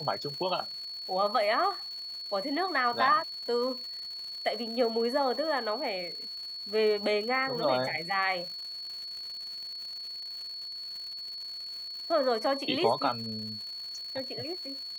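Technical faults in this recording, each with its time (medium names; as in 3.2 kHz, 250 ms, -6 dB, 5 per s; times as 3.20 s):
crackle 250 per s -40 dBFS
whine 4.4 kHz -37 dBFS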